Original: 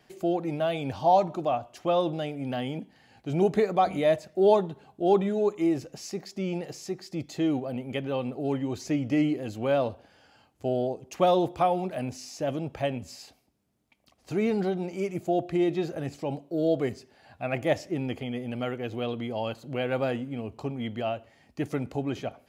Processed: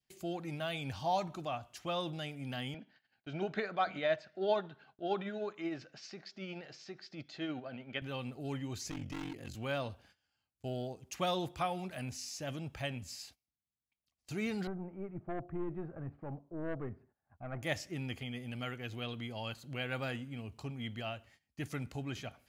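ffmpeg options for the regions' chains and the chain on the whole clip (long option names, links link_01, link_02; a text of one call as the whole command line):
ffmpeg -i in.wav -filter_complex "[0:a]asettb=1/sr,asplit=3[link_01][link_02][link_03];[link_01]atrim=end=2.744[link_04];[link_02]atrim=start=2.74:end=8.02,asetpts=PTS-STARTPTS,afade=type=in:duration=0.004:curve=qsin,afade=type=out:start_time=5.276:duration=0.004:curve=qsin,highpass=170,equalizer=frequency=180:width_type=q:width=4:gain=-3,equalizer=frequency=630:width_type=q:width=4:gain=6,equalizer=frequency=1500:width_type=q:width=4:gain=9,lowpass=frequency=4600:width=0.5412,lowpass=frequency=4600:width=1.3066,tremolo=f=13:d=0.33[link_05];[link_03]atrim=start=8.016[link_06];[link_04][link_05]acrossfade=duration=0.004:curve1=hsin:curve2=qsin[link_07];[link_07][link_06]acrossfade=duration=0.004:curve1=qsin:curve2=hsin,asettb=1/sr,asplit=3[link_08][link_09][link_10];[link_08]atrim=end=8.904[link_11];[link_09]atrim=start=8.9:end=9.55,asetpts=PTS-STARTPTS,afade=type=in:duration=0.004:curve=qsin,afade=type=out:start_time=0.646:duration=0.004:curve=qsin,asoftclip=type=hard:threshold=-26dB,aeval=exprs='val(0)*sin(2*PI*23*n/s)':channel_layout=same[link_12];[link_10]atrim=start=9.546[link_13];[link_11][link_12]acrossfade=duration=0.004:curve1=hsin:curve2=qsin[link_14];[link_14][link_13]acrossfade=duration=0.004:curve1=qsin:curve2=hsin,asettb=1/sr,asplit=3[link_15][link_16][link_17];[link_15]atrim=end=14.674[link_18];[link_16]atrim=start=14.67:end=17.63,asetpts=PTS-STARTPTS,afade=type=in:duration=0.004:curve=qsin,afade=type=out:start_time=2.956:duration=0.004:curve=qsin,lowpass=frequency=1300:width=0.5412,lowpass=frequency=1300:width=1.3066,aeval=exprs='(tanh(8.91*val(0)+0.25)-tanh(0.25))/8.91':channel_layout=same[link_19];[link_17]atrim=start=17.626[link_20];[link_18][link_19]acrossfade=duration=0.004:curve1=hsin:curve2=qsin[link_21];[link_21][link_20]acrossfade=duration=0.004:curve1=qsin:curve2=hsin,adynamicequalizer=threshold=0.00631:dfrequency=1500:dqfactor=1.3:tfrequency=1500:tqfactor=1.3:attack=5:release=100:ratio=0.375:range=2:mode=boostabove:tftype=bell,agate=range=-19dB:threshold=-53dB:ratio=16:detection=peak,equalizer=frequency=500:width=0.37:gain=-14.5" out.wav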